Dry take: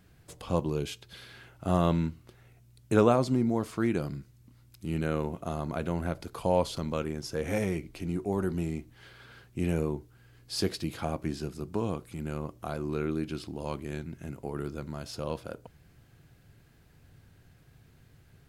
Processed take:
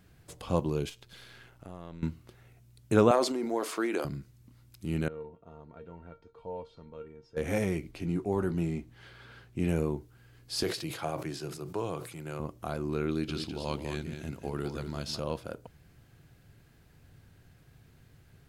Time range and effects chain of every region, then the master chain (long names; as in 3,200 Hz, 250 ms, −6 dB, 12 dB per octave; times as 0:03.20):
0:00.89–0:02.03: gain on one half-wave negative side −7 dB + downward compressor 3 to 1, threshold −45 dBFS
0:03.11–0:04.05: high-pass filter 330 Hz 24 dB per octave + transient designer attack +4 dB, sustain +8 dB
0:05.08–0:07.37: head-to-tape spacing loss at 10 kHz 29 dB + tuned comb filter 460 Hz, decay 0.19 s, mix 90%
0:07.91–0:09.68: high-shelf EQ 7,100 Hz −7 dB + double-tracking delay 18 ms −10.5 dB
0:10.63–0:12.40: high-pass filter 120 Hz 24 dB per octave + parametric band 220 Hz −15 dB 0.56 octaves + level that may fall only so fast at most 79 dB per second
0:13.08–0:15.20: parametric band 4,000 Hz +8 dB 1.2 octaves + single-tap delay 203 ms −7.5 dB
whole clip: no processing